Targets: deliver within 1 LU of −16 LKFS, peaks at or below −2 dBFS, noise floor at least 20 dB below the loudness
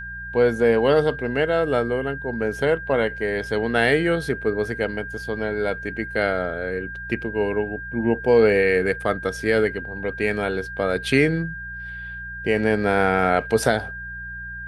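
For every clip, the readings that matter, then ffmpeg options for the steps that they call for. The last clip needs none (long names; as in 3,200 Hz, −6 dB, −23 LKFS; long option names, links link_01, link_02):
mains hum 60 Hz; hum harmonics up to 180 Hz; level of the hum −38 dBFS; interfering tone 1,600 Hz; level of the tone −32 dBFS; integrated loudness −22.0 LKFS; sample peak −4.5 dBFS; target loudness −16.0 LKFS
→ -af "bandreject=frequency=60:width_type=h:width=4,bandreject=frequency=120:width_type=h:width=4,bandreject=frequency=180:width_type=h:width=4"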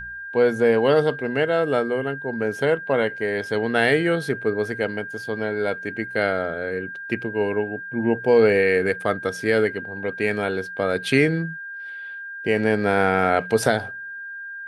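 mains hum none found; interfering tone 1,600 Hz; level of the tone −32 dBFS
→ -af "bandreject=frequency=1600:width=30"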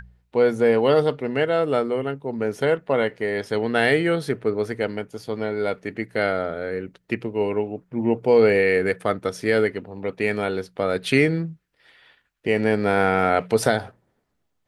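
interfering tone none found; integrated loudness −22.5 LKFS; sample peak −4.5 dBFS; target loudness −16.0 LKFS
→ -af "volume=6.5dB,alimiter=limit=-2dB:level=0:latency=1"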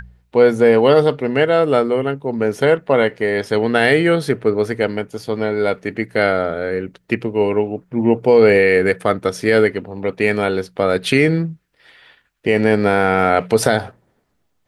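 integrated loudness −16.5 LKFS; sample peak −2.0 dBFS; background noise floor −66 dBFS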